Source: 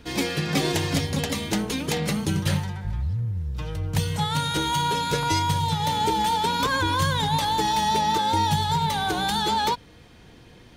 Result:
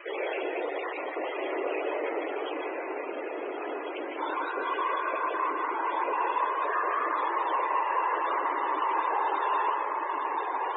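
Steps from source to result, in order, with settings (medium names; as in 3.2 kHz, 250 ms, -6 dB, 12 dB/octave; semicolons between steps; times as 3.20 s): random holes in the spectrogram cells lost 26%; dynamic bell 1.6 kHz, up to -5 dB, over -48 dBFS, Q 6; in parallel at 0 dB: compression 6:1, threshold -36 dBFS, peak gain reduction 16.5 dB; on the sum: saturation -24.5 dBFS, distortion -10 dB; volume shaper 93 bpm, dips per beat 1, -4 dB, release 252 ms; echo that smears into a reverb 1344 ms, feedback 53%, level -4 dB; added noise white -38 dBFS; whisper effect; hard clipper -24 dBFS, distortion -12 dB; on a send at -3 dB: reverberation RT60 1.0 s, pre-delay 105 ms; on the sum: mistuned SSB +110 Hz 260–2800 Hz; loudest bins only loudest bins 64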